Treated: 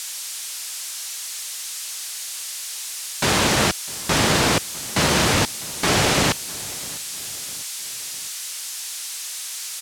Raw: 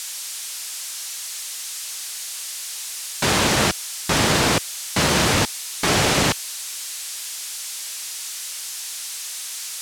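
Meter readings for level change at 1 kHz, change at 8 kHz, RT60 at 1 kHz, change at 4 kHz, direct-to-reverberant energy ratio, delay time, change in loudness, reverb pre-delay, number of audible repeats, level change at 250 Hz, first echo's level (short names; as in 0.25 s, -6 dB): 0.0 dB, 0.0 dB, none, 0.0 dB, none, 0.653 s, 0.0 dB, none, 3, 0.0 dB, -21.0 dB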